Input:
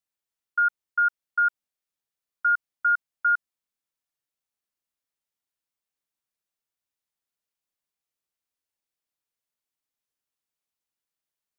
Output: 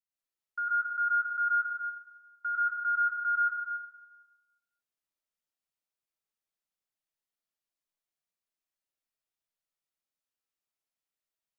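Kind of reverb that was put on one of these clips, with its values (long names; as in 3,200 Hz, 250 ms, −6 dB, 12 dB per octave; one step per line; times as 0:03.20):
comb and all-pass reverb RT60 1.2 s, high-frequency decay 0.85×, pre-delay 75 ms, DRR −7 dB
level −11.5 dB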